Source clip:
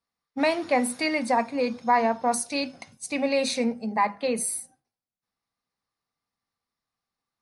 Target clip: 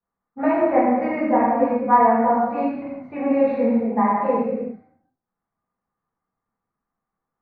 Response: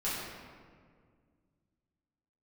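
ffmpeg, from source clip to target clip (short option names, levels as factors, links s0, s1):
-filter_complex "[0:a]lowpass=f=1600:w=0.5412,lowpass=f=1600:w=1.3066[s0];[1:a]atrim=start_sample=2205,afade=t=out:st=0.44:d=0.01,atrim=end_sample=19845[s1];[s0][s1]afir=irnorm=-1:irlink=0"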